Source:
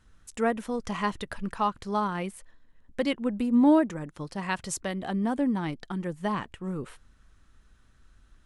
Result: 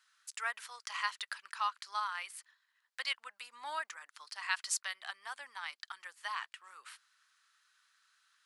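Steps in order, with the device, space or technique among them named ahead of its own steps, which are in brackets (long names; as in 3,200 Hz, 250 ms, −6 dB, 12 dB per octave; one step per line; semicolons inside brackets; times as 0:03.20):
headphones lying on a table (high-pass filter 1,200 Hz 24 dB per octave; parametric band 4,600 Hz +6.5 dB 0.38 octaves)
level −1 dB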